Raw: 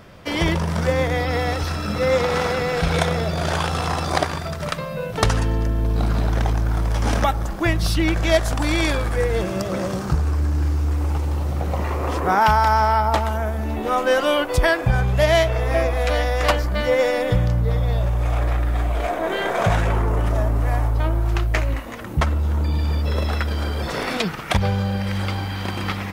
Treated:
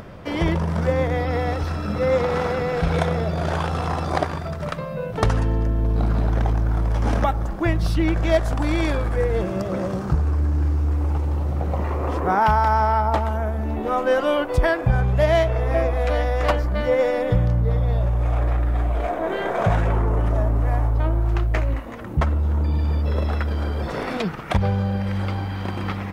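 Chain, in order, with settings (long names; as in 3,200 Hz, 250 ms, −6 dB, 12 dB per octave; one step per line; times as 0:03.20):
high-shelf EQ 2,200 Hz −11.5 dB
upward compression, threshold −32 dBFS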